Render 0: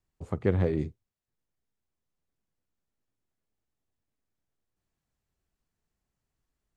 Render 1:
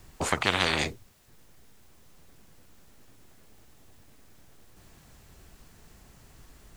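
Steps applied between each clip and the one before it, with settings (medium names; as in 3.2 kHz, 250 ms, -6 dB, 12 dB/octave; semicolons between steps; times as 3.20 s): spectrum-flattening compressor 10:1; trim +4 dB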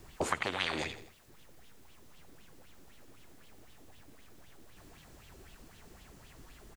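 feedback delay 82 ms, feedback 37%, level -15 dB; compression 4:1, threshold -32 dBFS, peak gain reduction 12 dB; sweeping bell 3.9 Hz 280–3400 Hz +11 dB; trim -2.5 dB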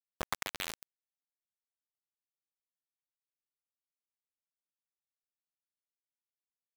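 bit crusher 4-bit; trim -4 dB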